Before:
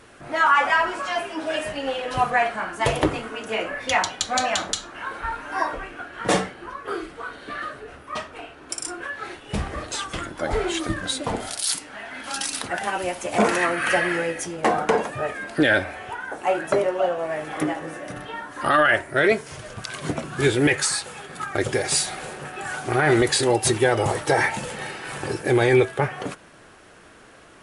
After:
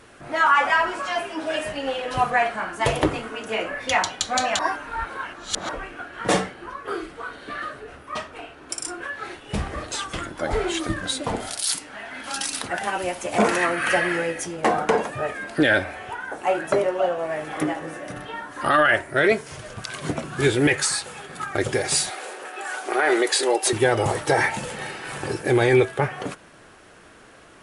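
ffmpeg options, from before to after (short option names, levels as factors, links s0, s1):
-filter_complex "[0:a]asettb=1/sr,asplit=3[s0][s1][s2];[s0]atrim=end=22.104[s3];[s1]atrim=start=22.1:end=23.73,asetpts=PTS-STARTPTS,afade=t=in:d=0.004:c=qsin,afade=t=out:st=1.626:d=0.004:c=qsin,highpass=f=340:w=0.5412,highpass=f=340:w=1.3066[s4];[s2]atrim=start=23.726[s5];[s3][s4]acrossfade=d=0.004:c1=hsin:c2=qsin[s6];[s6][s5]acrossfade=d=0.004:c1=qsin:c2=hsin,asplit=3[s7][s8][s9];[s7]atrim=end=4.592[s10];[s8]atrim=start=4.588:end=5.692,asetpts=PTS-STARTPTS,areverse[s11];[s9]atrim=start=5.688[s12];[s10][s11]acrossfade=d=0.004:c1=hsin:c2=hsin[s13];[s13][s12]acrossfade=d=0.004:c1=hsin:c2=hsin"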